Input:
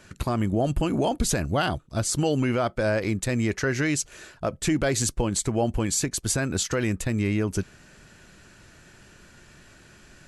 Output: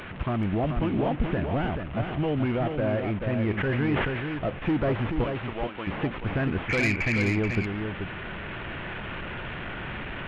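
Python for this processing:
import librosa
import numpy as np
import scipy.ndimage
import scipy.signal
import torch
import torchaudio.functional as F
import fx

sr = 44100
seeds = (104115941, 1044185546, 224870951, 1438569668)

y = fx.delta_mod(x, sr, bps=16000, step_db=-33.5)
y = fx.highpass(y, sr, hz=1300.0, slope=6, at=(5.24, 5.87))
y = fx.rider(y, sr, range_db=4, speed_s=2.0)
y = fx.lowpass_res(y, sr, hz=2300.0, q=15.0, at=(6.68, 7.21), fade=0.02)
y = 10.0 ** (-19.0 / 20.0) * np.tanh(y / 10.0 ** (-19.0 / 20.0))
y = y + 10.0 ** (-6.0 / 20.0) * np.pad(y, (int(432 * sr / 1000.0), 0))[:len(y)]
y = fx.sustainer(y, sr, db_per_s=31.0, at=(3.57, 4.35), fade=0.02)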